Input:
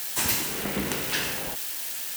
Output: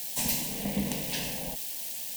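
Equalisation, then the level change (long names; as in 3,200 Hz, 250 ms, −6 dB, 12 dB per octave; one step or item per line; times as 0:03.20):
low-shelf EQ 290 Hz +9 dB
phaser with its sweep stopped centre 360 Hz, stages 6
−3.5 dB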